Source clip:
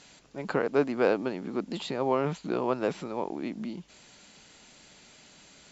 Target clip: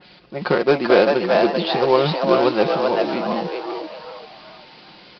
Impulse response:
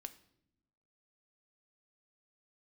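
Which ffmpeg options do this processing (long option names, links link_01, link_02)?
-filter_complex "[0:a]highpass=frequency=44:poles=1,equalizer=frequency=410:width=2.3:gain=2.5,aecho=1:1:5.6:0.54,bandreject=frequency=328.8:width_type=h:width=4,bandreject=frequency=657.6:width_type=h:width=4,bandreject=frequency=986.4:width_type=h:width=4,bandreject=frequency=1315.2:width_type=h:width=4,bandreject=frequency=1644:width_type=h:width=4,bandreject=frequency=1972.8:width_type=h:width=4,bandreject=frequency=2301.6:width_type=h:width=4,bandreject=frequency=2630.4:width_type=h:width=4,bandreject=frequency=2959.2:width_type=h:width=4,bandreject=frequency=3288:width_type=h:width=4,bandreject=frequency=3616.8:width_type=h:width=4,bandreject=frequency=3945.6:width_type=h:width=4,bandreject=frequency=4274.4:width_type=h:width=4,bandreject=frequency=4603.2:width_type=h:width=4,bandreject=frequency=4932:width_type=h:width=4,bandreject=frequency=5260.8:width_type=h:width=4,bandreject=frequency=5589.6:width_type=h:width=4,bandreject=frequency=5918.4:width_type=h:width=4,bandreject=frequency=6247.2:width_type=h:width=4,atempo=1.1,acrusher=bits=4:mode=log:mix=0:aa=0.000001,aresample=11025,aresample=44100,asplit=6[link_01][link_02][link_03][link_04][link_05][link_06];[link_02]adelay=390,afreqshift=140,volume=-3dB[link_07];[link_03]adelay=780,afreqshift=280,volume=-11.2dB[link_08];[link_04]adelay=1170,afreqshift=420,volume=-19.4dB[link_09];[link_05]adelay=1560,afreqshift=560,volume=-27.5dB[link_10];[link_06]adelay=1950,afreqshift=700,volume=-35.7dB[link_11];[link_01][link_07][link_08][link_09][link_10][link_11]amix=inputs=6:normalize=0,adynamicequalizer=threshold=0.00794:dfrequency=2500:dqfactor=0.7:tfrequency=2500:tqfactor=0.7:attack=5:release=100:ratio=0.375:range=2.5:mode=boostabove:tftype=highshelf,volume=7.5dB"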